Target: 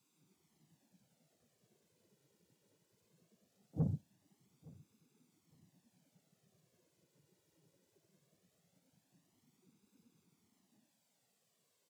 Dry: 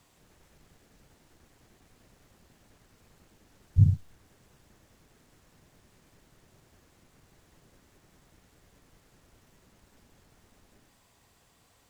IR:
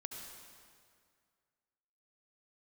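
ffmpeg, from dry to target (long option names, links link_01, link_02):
-filter_complex "[0:a]afftdn=noise_reduction=14:noise_floor=-49,highpass=frequency=180:width=0.5412,highpass=frequency=180:width=1.3066,equalizer=frequency=1200:width_type=o:width=2.1:gain=-11.5,flanger=delay=0.3:depth=7.7:regen=-23:speed=2:shape=triangular,asplit=2[link_01][link_02];[link_02]asetrate=88200,aresample=44100,atempo=0.5,volume=-10dB[link_03];[link_01][link_03]amix=inputs=2:normalize=0,flanger=delay=0.8:depth=1.3:regen=-18:speed=0.2:shape=sinusoidal,asoftclip=type=tanh:threshold=-38dB,aecho=1:1:864|1728:0.0708|0.0149,volume=10.5dB"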